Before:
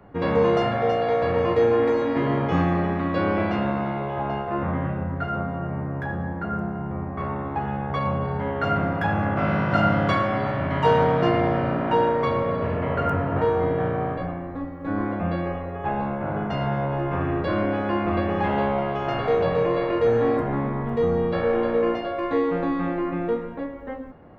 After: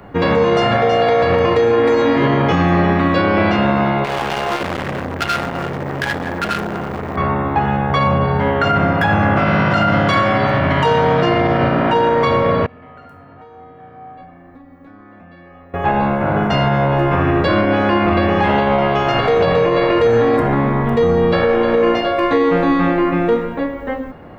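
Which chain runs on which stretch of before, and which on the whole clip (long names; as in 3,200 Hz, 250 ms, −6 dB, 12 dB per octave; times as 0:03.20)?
0:04.04–0:07.16: drawn EQ curve 200 Hz 0 dB, 430 Hz +5 dB, 910 Hz +2 dB, 3,000 Hz +10 dB + hard clipping −25 dBFS + saturating transformer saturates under 380 Hz
0:12.66–0:15.74: downward compressor 10 to 1, threshold −30 dBFS + tuned comb filter 250 Hz, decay 0.49 s, harmonics odd, mix 90%
whole clip: high-shelf EQ 2,200 Hz +8.5 dB; boost into a limiter +15 dB; level −5 dB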